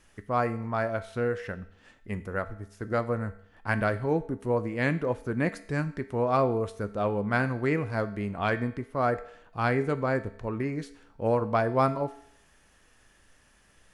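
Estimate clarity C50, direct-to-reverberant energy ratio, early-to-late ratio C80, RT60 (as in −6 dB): 15.0 dB, 10.5 dB, 17.5 dB, 0.65 s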